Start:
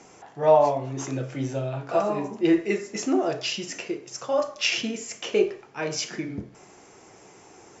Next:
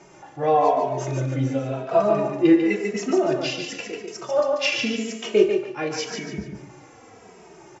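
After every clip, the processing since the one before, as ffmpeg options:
-filter_complex "[0:a]lowpass=f=3.6k:p=1,asplit=2[a][b];[b]aecho=0:1:145|290|435|580:0.562|0.197|0.0689|0.0241[c];[a][c]amix=inputs=2:normalize=0,asplit=2[d][e];[e]adelay=2.8,afreqshift=-0.92[f];[d][f]amix=inputs=2:normalize=1,volume=5.5dB"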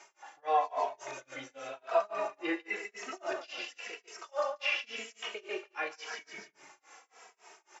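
-filter_complex "[0:a]tremolo=f=3.6:d=0.98,highpass=1k,acrossover=split=2700[a][b];[b]acompressor=threshold=-48dB:ratio=4:attack=1:release=60[c];[a][c]amix=inputs=2:normalize=0"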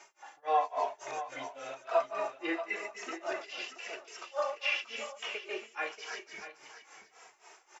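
-filter_complex "[0:a]asplit=2[a][b];[b]aecho=0:1:634:0.266[c];[a][c]amix=inputs=2:normalize=0,asubboost=boost=7:cutoff=65"

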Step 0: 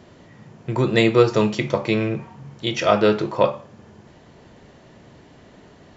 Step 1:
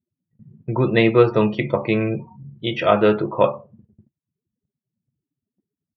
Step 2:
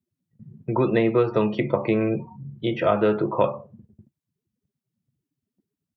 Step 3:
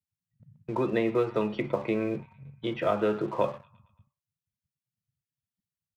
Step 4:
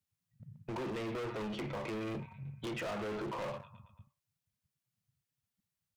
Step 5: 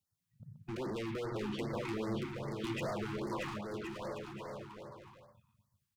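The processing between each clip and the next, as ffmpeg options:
-af "afftdn=nr=35:nf=-34,lowpass=f=3.4k:w=0.5412,lowpass=f=3.4k:w=1.3066,agate=range=-25dB:threshold=-50dB:ratio=16:detection=peak,volume=1dB"
-filter_complex "[0:a]acrossover=split=190|1700[a][b][c];[a]acompressor=threshold=-33dB:ratio=4[d];[b]acompressor=threshold=-19dB:ratio=4[e];[c]acompressor=threshold=-41dB:ratio=4[f];[d][e][f]amix=inputs=3:normalize=0,volume=1.5dB"
-filter_complex "[0:a]acrossover=split=150|1100[a][b][c];[a]alimiter=level_in=11.5dB:limit=-24dB:level=0:latency=1,volume=-11.5dB[d];[b]aeval=exprs='sgn(val(0))*max(abs(val(0))-0.0075,0)':c=same[e];[c]aecho=1:1:113|226|339|452|565:0.126|0.073|0.0424|0.0246|0.0142[f];[d][e][f]amix=inputs=3:normalize=0,volume=-5.5dB"
-af "alimiter=limit=-22dB:level=0:latency=1:release=27,asoftclip=type=tanh:threshold=-40dB,volume=3.5dB"
-filter_complex "[0:a]asplit=2[a][b];[b]aecho=0:1:630|1071|1380|1596|1747:0.631|0.398|0.251|0.158|0.1[c];[a][c]amix=inputs=2:normalize=0,afftfilt=real='re*(1-between(b*sr/1024,500*pow(3100/500,0.5+0.5*sin(2*PI*2.5*pts/sr))/1.41,500*pow(3100/500,0.5+0.5*sin(2*PI*2.5*pts/sr))*1.41))':imag='im*(1-between(b*sr/1024,500*pow(3100/500,0.5+0.5*sin(2*PI*2.5*pts/sr))/1.41,500*pow(3100/500,0.5+0.5*sin(2*PI*2.5*pts/sr))*1.41))':win_size=1024:overlap=0.75"

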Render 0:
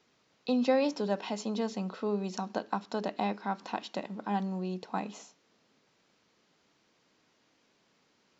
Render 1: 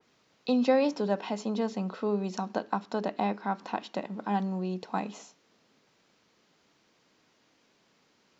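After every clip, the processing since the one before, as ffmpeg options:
-af "adynamicequalizer=threshold=0.00316:dfrequency=2600:dqfactor=0.7:tfrequency=2600:tqfactor=0.7:attack=5:release=100:ratio=0.375:range=3:mode=cutabove:tftype=highshelf,volume=2.5dB"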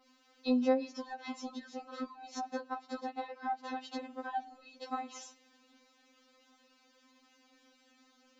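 -af "acompressor=threshold=-35dB:ratio=8,afftfilt=real='re*3.46*eq(mod(b,12),0)':imag='im*3.46*eq(mod(b,12),0)':win_size=2048:overlap=0.75,volume=3.5dB"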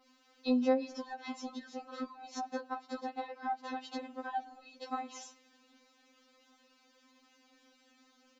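-filter_complex "[0:a]asplit=2[a][b];[b]adelay=210,highpass=300,lowpass=3.4k,asoftclip=type=hard:threshold=-24.5dB,volume=-23dB[c];[a][c]amix=inputs=2:normalize=0"

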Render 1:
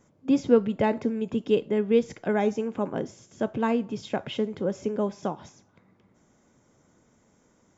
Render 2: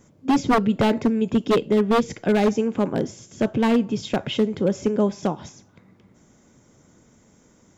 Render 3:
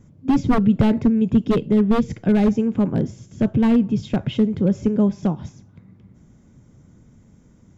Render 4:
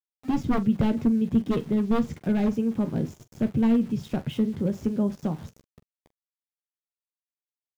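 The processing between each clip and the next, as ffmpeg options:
-af "equalizer=f=920:w=0.51:g=-5,aeval=exprs='0.0944*(abs(mod(val(0)/0.0944+3,4)-2)-1)':c=same,volume=9dB"
-af "bass=f=250:g=15,treble=f=4k:g=-4,volume=-4.5dB"
-filter_complex "[0:a]aeval=exprs='val(0)*gte(abs(val(0)),0.0133)':c=same,asplit=2[a][b];[b]aecho=0:1:13|44:0.316|0.168[c];[a][c]amix=inputs=2:normalize=0,volume=-7dB"

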